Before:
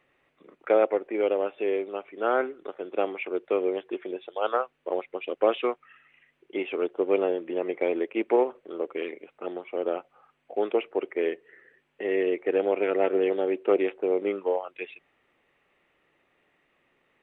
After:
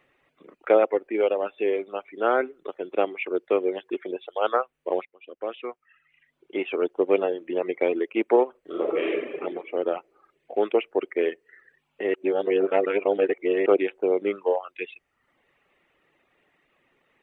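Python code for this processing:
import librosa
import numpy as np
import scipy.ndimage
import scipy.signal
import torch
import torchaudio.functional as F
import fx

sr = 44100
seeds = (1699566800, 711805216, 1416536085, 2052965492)

y = fx.reverb_throw(x, sr, start_s=8.6, length_s=0.73, rt60_s=1.9, drr_db=-5.0)
y = fx.edit(y, sr, fx.fade_in_from(start_s=5.05, length_s=1.68, curve='qua', floor_db=-14.5),
    fx.reverse_span(start_s=12.14, length_s=1.52), tone=tone)
y = fx.dereverb_blind(y, sr, rt60_s=0.74)
y = F.gain(torch.from_numpy(y), 3.5).numpy()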